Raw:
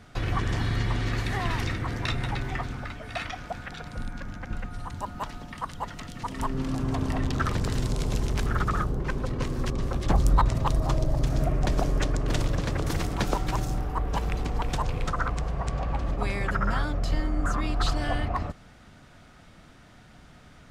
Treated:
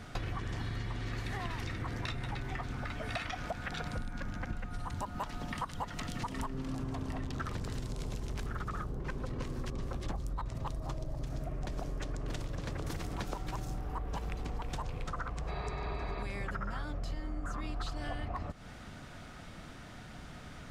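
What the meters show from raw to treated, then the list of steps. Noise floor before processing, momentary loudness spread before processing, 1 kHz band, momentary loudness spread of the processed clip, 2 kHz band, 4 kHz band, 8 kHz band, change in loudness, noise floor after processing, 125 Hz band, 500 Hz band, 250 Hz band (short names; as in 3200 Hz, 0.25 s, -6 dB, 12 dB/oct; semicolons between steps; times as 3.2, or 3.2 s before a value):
-52 dBFS, 10 LU, -9.5 dB, 4 LU, -8.5 dB, -9.0 dB, -10.0 dB, -10.5 dB, -49 dBFS, -10.5 dB, -10.0 dB, -10.0 dB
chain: spectral repair 15.5–16.2, 310–4800 Hz after; compressor 16:1, threshold -37 dBFS, peak gain reduction 22 dB; gain +3.5 dB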